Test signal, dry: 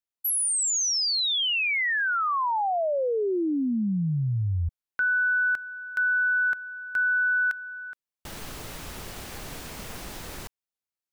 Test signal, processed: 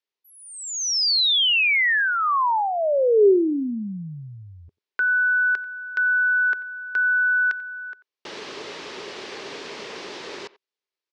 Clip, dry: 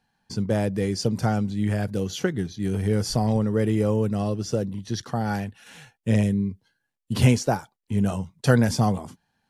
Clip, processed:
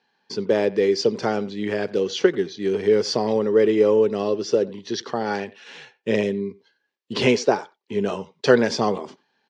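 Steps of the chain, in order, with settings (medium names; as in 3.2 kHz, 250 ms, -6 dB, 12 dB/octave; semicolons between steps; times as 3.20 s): cabinet simulation 370–5300 Hz, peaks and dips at 400 Hz +9 dB, 730 Hz -6 dB, 1.4 kHz -4 dB; speakerphone echo 90 ms, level -19 dB; trim +6.5 dB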